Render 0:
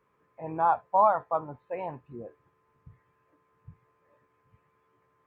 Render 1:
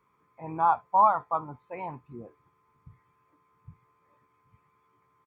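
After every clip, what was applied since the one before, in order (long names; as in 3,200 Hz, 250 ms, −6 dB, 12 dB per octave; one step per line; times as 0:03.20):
low-shelf EQ 150 Hz −4.5 dB
comb filter 0.9 ms, depth 52%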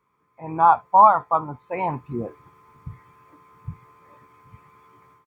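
automatic gain control gain up to 16 dB
level −1 dB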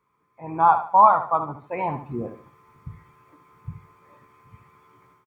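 repeating echo 73 ms, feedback 33%, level −10 dB
level −1.5 dB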